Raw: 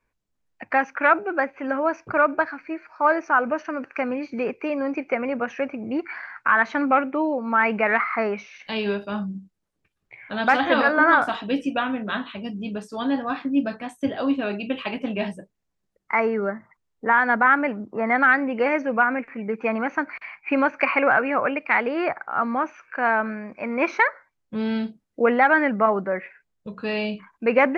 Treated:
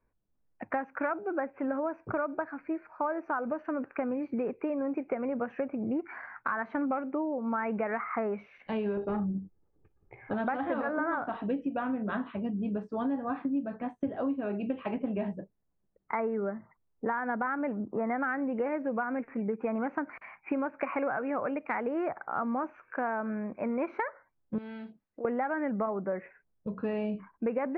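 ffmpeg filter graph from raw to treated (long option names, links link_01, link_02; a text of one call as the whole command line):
ffmpeg -i in.wav -filter_complex "[0:a]asettb=1/sr,asplit=3[link_01][link_02][link_03];[link_01]atrim=end=8.974[link_04];[link_02]atrim=start=8.97:end=10.34,asetpts=PTS-STARTPTS,afade=type=in:duration=0.004:curve=qsin,afade=type=out:start_time=1.366:duration=0.004:curve=qsin,equalizer=frequency=2400:width=0.62:gain=-9,aecho=1:1:2.4:0.47,atrim=end_sample=60417,aeval=exprs='0.0841*sin(PI/2*1.58*val(0)/0.0841)':channel_layout=same[link_05];[link_03]atrim=start=10.336[link_06];[link_04][link_05]acrossfade=duration=0.004:curve1=hsin:curve2=qsin[link_07];[link_07][link_06]acrossfade=duration=0.004:curve1=qsin:curve2=hsin,asettb=1/sr,asplit=3[link_08][link_09][link_10];[link_08]atrim=end=24.584[link_11];[link_09]atrim=start=24.58:end=25.25,asetpts=PTS-STARTPTS,afade=type=in:duration=0.004:curve=qsin,afade=type=out:start_time=0.666:duration=0.004:curve=qsin,tiltshelf=frequency=930:gain=-10,bandreject=frequency=1400:width=18,acompressor=threshold=-41dB:ratio=2.5:attack=3.2:release=140:knee=1:detection=peak[link_12];[link_10]atrim=start=25.246[link_13];[link_11][link_12]acrossfade=duration=0.004:curve1=hsin:curve2=qsin[link_14];[link_14][link_13]acrossfade=duration=0.004:curve1=qsin:curve2=hsin,lowpass=1900,tiltshelf=frequency=1300:gain=5.5,acompressor=threshold=-24dB:ratio=6,volume=-4.5dB" out.wav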